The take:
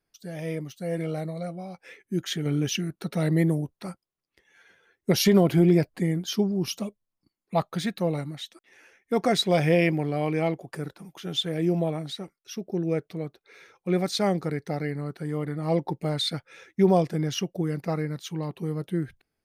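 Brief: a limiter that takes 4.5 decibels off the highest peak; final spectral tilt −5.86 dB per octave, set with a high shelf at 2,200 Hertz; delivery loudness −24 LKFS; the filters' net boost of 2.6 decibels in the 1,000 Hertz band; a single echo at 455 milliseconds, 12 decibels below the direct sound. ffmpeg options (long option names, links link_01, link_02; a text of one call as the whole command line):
ffmpeg -i in.wav -af "equalizer=frequency=1000:width_type=o:gain=4.5,highshelf=frequency=2200:gain=-3,alimiter=limit=-13dB:level=0:latency=1,aecho=1:1:455:0.251,volume=3.5dB" out.wav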